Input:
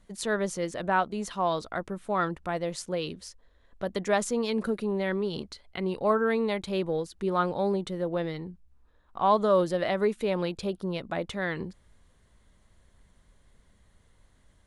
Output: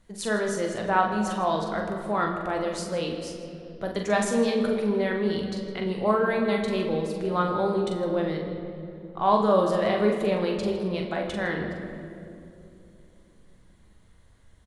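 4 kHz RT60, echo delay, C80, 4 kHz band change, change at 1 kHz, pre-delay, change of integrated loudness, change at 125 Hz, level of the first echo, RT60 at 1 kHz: 1.7 s, 43 ms, 6.0 dB, +2.5 dB, +3.0 dB, 9 ms, +3.0 dB, +3.0 dB, -5.5 dB, 2.2 s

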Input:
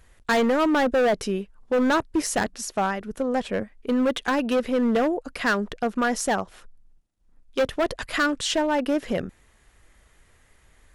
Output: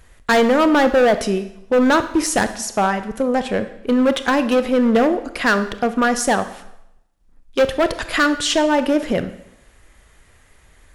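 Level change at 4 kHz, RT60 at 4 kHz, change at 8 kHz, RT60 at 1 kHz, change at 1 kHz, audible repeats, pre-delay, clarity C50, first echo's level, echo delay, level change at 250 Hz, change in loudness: +6.5 dB, 0.75 s, +6.5 dB, 0.80 s, +6.5 dB, no echo, 24 ms, 12.5 dB, no echo, no echo, +6.0 dB, +6.5 dB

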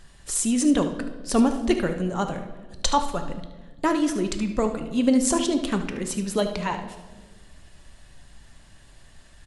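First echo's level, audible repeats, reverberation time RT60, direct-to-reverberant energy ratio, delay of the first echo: -12.0 dB, 1, 1.4 s, 5.5 dB, 74 ms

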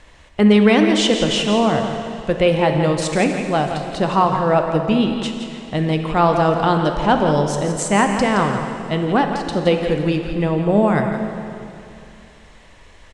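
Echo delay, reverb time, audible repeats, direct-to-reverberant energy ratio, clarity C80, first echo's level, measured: 169 ms, 2.7 s, 1, 3.5 dB, 5.0 dB, -9.5 dB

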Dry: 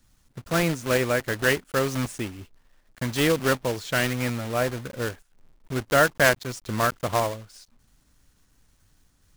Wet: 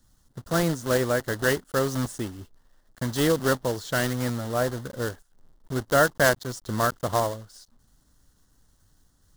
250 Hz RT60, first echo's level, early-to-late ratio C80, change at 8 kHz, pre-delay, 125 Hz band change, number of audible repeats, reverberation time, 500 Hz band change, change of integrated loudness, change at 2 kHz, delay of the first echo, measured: no reverb, no echo, no reverb, 0.0 dB, no reverb, 0.0 dB, no echo, no reverb, 0.0 dB, -1.0 dB, -3.0 dB, no echo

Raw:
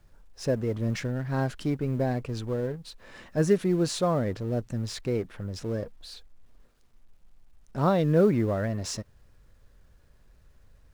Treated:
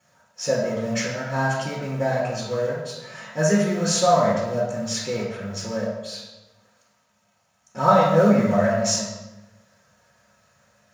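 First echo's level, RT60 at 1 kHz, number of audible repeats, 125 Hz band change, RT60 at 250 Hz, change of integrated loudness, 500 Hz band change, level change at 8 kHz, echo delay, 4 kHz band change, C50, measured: no echo, 0.95 s, no echo, +1.0 dB, 1.5 s, +5.5 dB, +6.0 dB, +13.0 dB, no echo, +9.5 dB, 0.0 dB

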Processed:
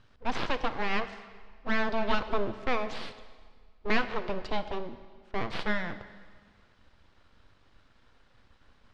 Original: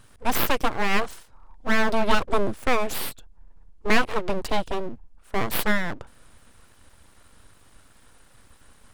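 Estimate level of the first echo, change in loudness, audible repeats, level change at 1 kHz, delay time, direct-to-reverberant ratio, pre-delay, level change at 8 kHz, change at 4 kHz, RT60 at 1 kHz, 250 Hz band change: no echo, -7.0 dB, no echo, -6.5 dB, no echo, 11.0 dB, 6 ms, under -15 dB, -7.0 dB, 1.7 s, -6.5 dB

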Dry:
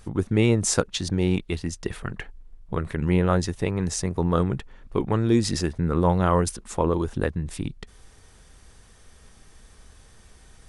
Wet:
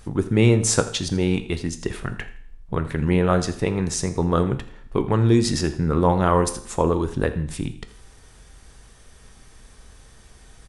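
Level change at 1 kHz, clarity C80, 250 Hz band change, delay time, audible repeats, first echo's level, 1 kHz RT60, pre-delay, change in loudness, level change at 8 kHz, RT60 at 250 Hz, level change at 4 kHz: +3.0 dB, 14.5 dB, +2.0 dB, 83 ms, 2, -17.5 dB, 0.60 s, 7 ms, +2.5 dB, +3.0 dB, 0.55 s, +3.0 dB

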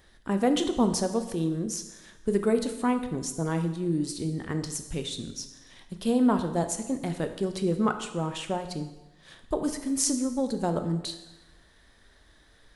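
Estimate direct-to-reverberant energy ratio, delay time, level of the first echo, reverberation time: 7.5 dB, no echo, no echo, 1.0 s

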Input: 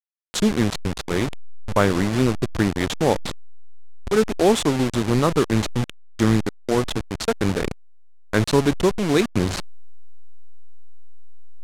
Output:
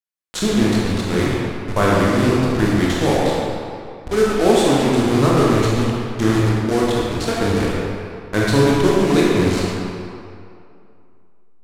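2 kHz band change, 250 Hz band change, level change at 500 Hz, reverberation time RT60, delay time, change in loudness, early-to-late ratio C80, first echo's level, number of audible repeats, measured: +4.5 dB, +4.5 dB, +4.5 dB, 2.6 s, no echo, +4.0 dB, -1.0 dB, no echo, no echo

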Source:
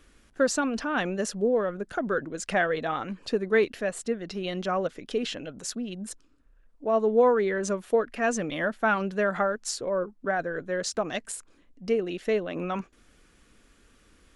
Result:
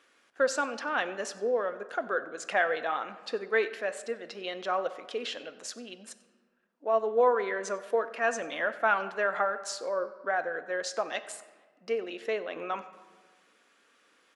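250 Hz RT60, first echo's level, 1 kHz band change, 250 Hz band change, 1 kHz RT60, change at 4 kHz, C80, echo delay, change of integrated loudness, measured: 1.6 s, -21.5 dB, -0.5 dB, -12.5 dB, 1.4 s, -2.5 dB, 14.5 dB, 94 ms, -3.0 dB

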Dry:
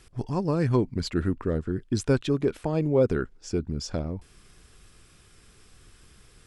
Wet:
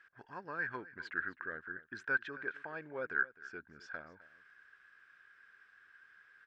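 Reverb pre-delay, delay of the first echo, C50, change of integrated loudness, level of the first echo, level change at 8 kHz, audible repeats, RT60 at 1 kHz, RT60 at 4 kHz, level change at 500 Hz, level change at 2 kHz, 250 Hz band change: no reverb, 258 ms, no reverb, -13.0 dB, -18.5 dB, under -25 dB, 1, no reverb, no reverb, -20.5 dB, +6.5 dB, -25.5 dB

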